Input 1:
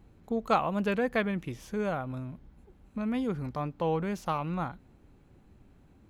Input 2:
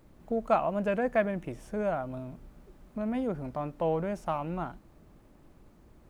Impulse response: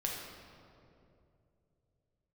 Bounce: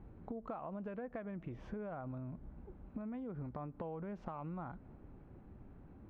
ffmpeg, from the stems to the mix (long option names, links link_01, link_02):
-filter_complex "[0:a]volume=2.5dB[link_01];[1:a]volume=-14.5dB,asplit=3[link_02][link_03][link_04];[link_03]volume=-23dB[link_05];[link_04]apad=whole_len=268593[link_06];[link_01][link_06]sidechaincompress=threshold=-51dB:ratio=8:attack=7.1:release=128[link_07];[2:a]atrim=start_sample=2205[link_08];[link_05][link_08]afir=irnorm=-1:irlink=0[link_09];[link_07][link_02][link_09]amix=inputs=3:normalize=0,lowpass=1500,acompressor=threshold=-41dB:ratio=6"